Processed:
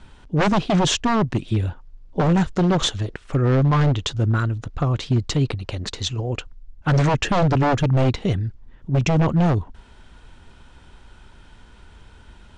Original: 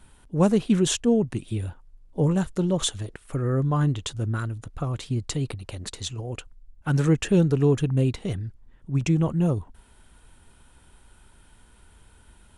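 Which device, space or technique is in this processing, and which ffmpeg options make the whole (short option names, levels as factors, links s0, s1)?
synthesiser wavefolder: -af "aeval=exprs='0.106*(abs(mod(val(0)/0.106+3,4)-2)-1)':c=same,lowpass=f=6200:w=0.5412,lowpass=f=6200:w=1.3066,volume=2.37"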